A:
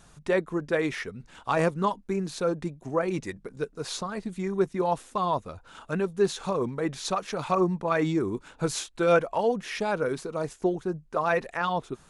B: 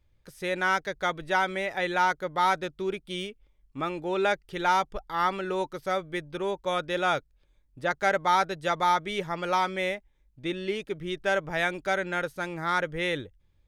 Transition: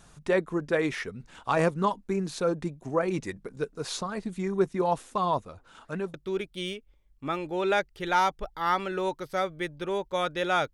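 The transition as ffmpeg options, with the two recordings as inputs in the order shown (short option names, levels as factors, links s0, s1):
-filter_complex "[0:a]asettb=1/sr,asplit=3[s0][s1][s2];[s0]atrim=end=5.454[s3];[s1]atrim=start=5.45:end=6.14,asetpts=PTS-STARTPTS,afade=t=in:d=0.004:c=qsin,afade=t=out:st=0.686:d=0.004:c=qsin,flanger=delay=2.8:depth=7.1:regen=89:speed=1.8:shape=sinusoidal[s4];[s2]atrim=start=6.136[s5];[s3][s4]acrossfade=d=0.004:c1=hsin:c2=qsin[s6];[s6][s5]acrossfade=d=0.004:c1=qsin:c2=hsin,apad=whole_dur=10.73,atrim=end=10.73,atrim=end=6.142[s7];[1:a]atrim=start=2.668:end=7.26[s8];[s7][s8]acrossfade=d=0.004:c1=hsin:c2=hsin"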